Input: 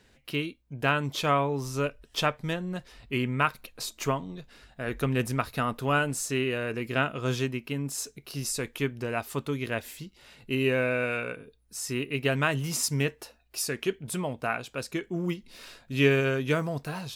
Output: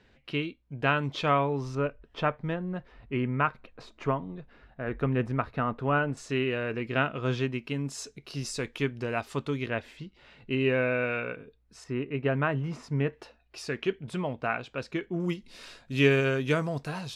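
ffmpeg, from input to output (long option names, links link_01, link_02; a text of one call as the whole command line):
ffmpeg -i in.wav -af "asetnsamples=nb_out_samples=441:pad=0,asendcmd='1.75 lowpass f 1800;6.17 lowpass f 3400;7.53 lowpass f 5700;9.66 lowpass f 3100;11.84 lowpass f 1600;13.13 lowpass f 3500;15.2 lowpass f 8600',lowpass=3600" out.wav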